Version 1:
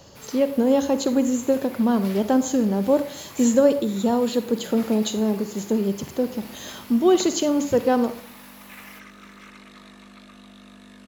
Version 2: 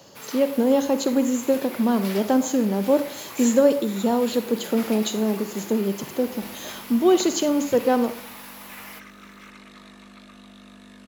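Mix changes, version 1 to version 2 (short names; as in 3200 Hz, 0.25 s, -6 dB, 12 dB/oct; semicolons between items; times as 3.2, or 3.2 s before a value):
speech: add HPF 160 Hz 12 dB/oct; first sound +5.5 dB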